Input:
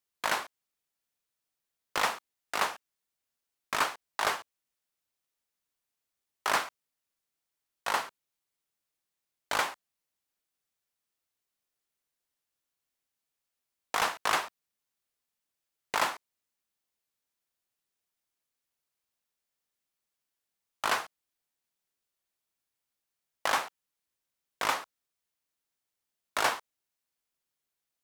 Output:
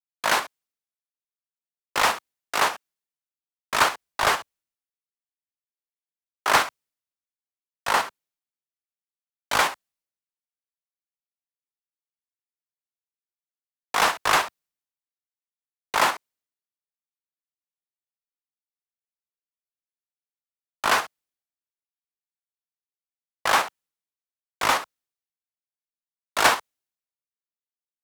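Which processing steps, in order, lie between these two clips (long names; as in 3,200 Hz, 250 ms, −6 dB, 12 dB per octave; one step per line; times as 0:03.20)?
in parallel at +2 dB: output level in coarse steps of 12 dB
on the sum: soft clipping −17 dBFS, distortion −14 dB
multiband upward and downward expander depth 100%
level +3 dB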